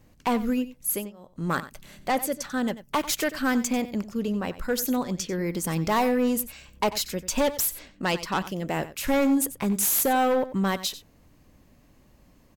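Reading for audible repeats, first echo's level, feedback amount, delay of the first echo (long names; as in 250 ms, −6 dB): 1, −15.0 dB, repeats not evenly spaced, 92 ms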